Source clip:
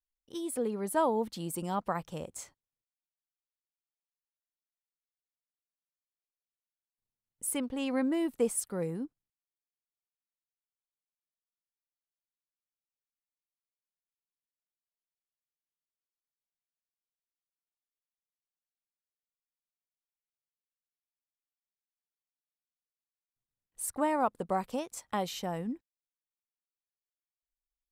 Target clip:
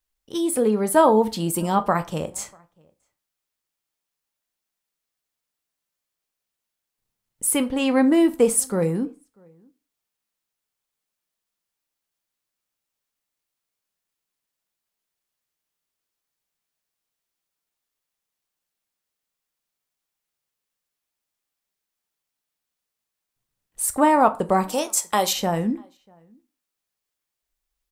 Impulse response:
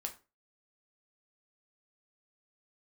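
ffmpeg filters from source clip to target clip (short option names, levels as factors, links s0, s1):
-filter_complex "[0:a]asettb=1/sr,asplit=3[s0][s1][s2];[s0]atrim=end=24.694[s3];[s1]atrim=start=24.69:end=25.33,asetpts=PTS-STARTPTS,afade=t=in:d=0.004:c=qsin,afade=t=out:st=0.636:d=0.004:c=qsin,bass=f=250:g=-12,treble=f=4000:g=10[s4];[s2]atrim=start=25.326[s5];[s3][s4]acrossfade=d=0.004:c1=hsin:c2=qsin[s6];[s6][s5]acrossfade=d=0.004:c1=qsin:c2=hsin,asplit=2[s7][s8];[s8]adelay=641.4,volume=0.0316,highshelf=f=4000:g=-14.4[s9];[s7][s9]amix=inputs=2:normalize=0,asplit=2[s10][s11];[1:a]atrim=start_sample=2205[s12];[s11][s12]afir=irnorm=-1:irlink=0,volume=1.5[s13];[s10][s13]amix=inputs=2:normalize=0,volume=1.88"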